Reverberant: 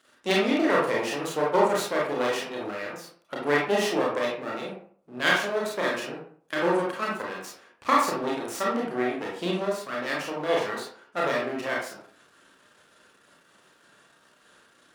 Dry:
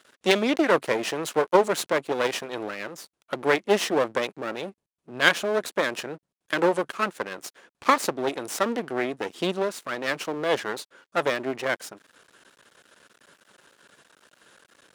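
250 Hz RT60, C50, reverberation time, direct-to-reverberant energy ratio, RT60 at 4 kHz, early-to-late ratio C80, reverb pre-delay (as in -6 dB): 0.55 s, 2.0 dB, 0.55 s, -4.0 dB, 0.30 s, 7.5 dB, 27 ms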